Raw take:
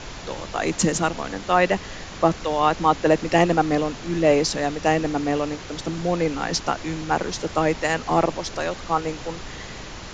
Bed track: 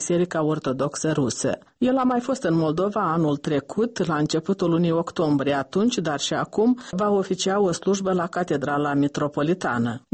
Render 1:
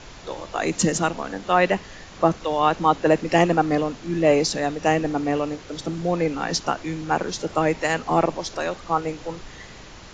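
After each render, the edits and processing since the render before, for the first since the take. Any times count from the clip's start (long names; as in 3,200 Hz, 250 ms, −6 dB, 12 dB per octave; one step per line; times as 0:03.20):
noise reduction from a noise print 6 dB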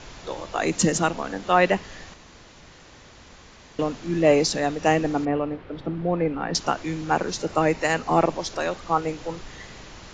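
0:02.14–0:03.79: fill with room tone
0:05.25–0:06.55: high-frequency loss of the air 470 metres
0:07.20–0:08.22: notch filter 3,300 Hz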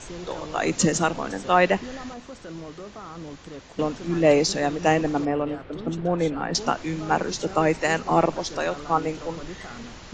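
mix in bed track −17 dB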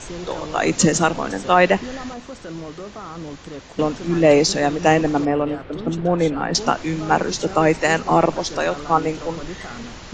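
level +5 dB
brickwall limiter −3 dBFS, peak gain reduction 3 dB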